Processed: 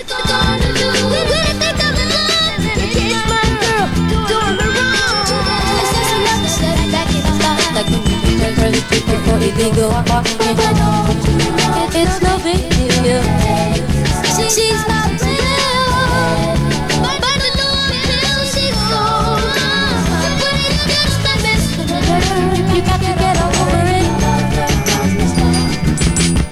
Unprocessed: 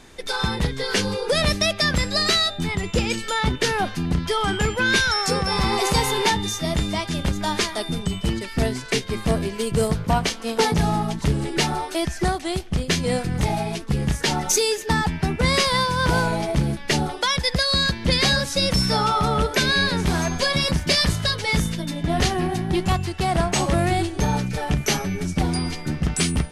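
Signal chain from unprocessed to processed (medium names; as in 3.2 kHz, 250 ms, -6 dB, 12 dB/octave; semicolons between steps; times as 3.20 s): reverse echo 189 ms -6 dB; peak limiter -13.5 dBFS, peak gain reduction 7 dB; gain riding 2 s; bit-crushed delay 687 ms, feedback 35%, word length 8-bit, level -13 dB; trim +9 dB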